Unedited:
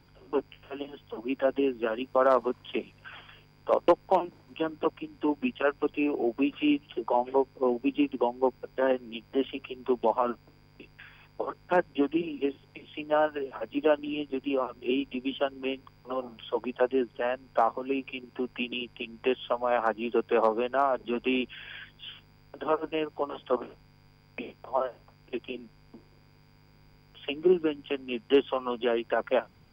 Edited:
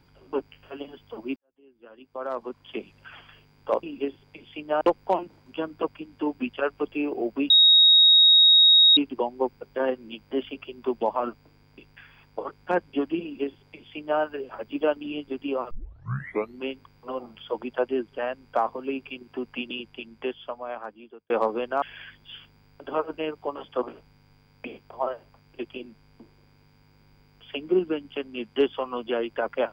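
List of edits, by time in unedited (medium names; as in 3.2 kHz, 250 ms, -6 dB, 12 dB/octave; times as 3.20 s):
1.36–2.94 s: fade in quadratic
6.52–7.99 s: bleep 3.77 kHz -12 dBFS
12.24–13.22 s: copy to 3.83 s
14.73 s: tape start 0.90 s
18.77–20.32 s: fade out
20.84–21.56 s: delete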